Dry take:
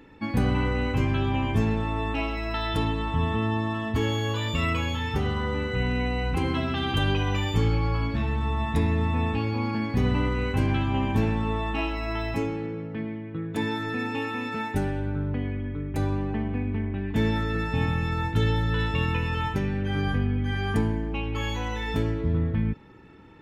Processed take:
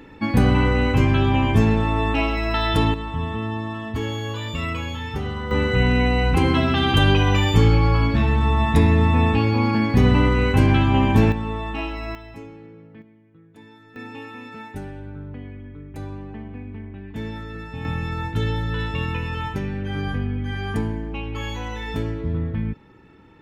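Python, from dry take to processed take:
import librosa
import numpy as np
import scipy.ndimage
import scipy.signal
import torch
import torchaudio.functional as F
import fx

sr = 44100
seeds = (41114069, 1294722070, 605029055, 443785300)

y = fx.gain(x, sr, db=fx.steps((0.0, 7.0), (2.94, -1.0), (5.51, 8.0), (11.32, 0.0), (12.15, -11.0), (13.02, -19.0), (13.96, -7.0), (17.85, 0.0)))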